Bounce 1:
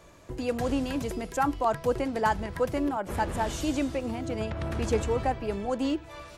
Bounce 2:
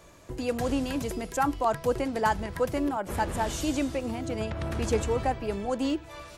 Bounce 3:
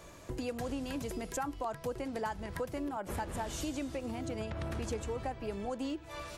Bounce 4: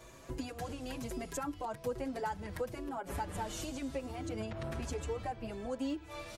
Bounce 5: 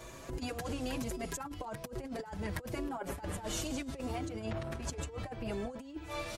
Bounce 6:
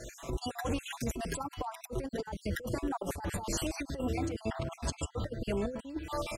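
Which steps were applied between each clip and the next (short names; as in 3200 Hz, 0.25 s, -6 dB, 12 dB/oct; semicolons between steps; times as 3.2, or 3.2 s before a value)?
high shelf 5400 Hz +4.5 dB
compressor 4:1, threshold -37 dBFS, peak gain reduction 14 dB; gain +1 dB
endless flanger 5.9 ms +1.1 Hz; gain +1.5 dB
negative-ratio compressor -41 dBFS, ratio -0.5; gain +3 dB
random spectral dropouts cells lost 47%; gain +5.5 dB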